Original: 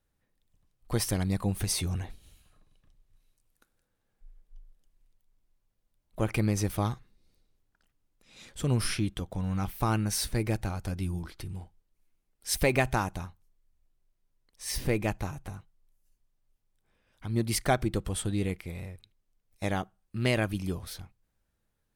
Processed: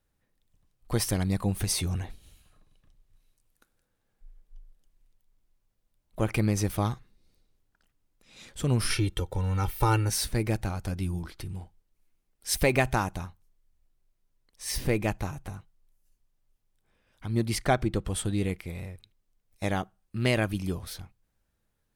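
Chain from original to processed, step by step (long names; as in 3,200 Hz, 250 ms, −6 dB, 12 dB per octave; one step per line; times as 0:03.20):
0:08.90–0:10.10: comb filter 2.2 ms, depth 99%
0:17.48–0:18.09: high-shelf EQ 7,700 Hz −9 dB
level +1.5 dB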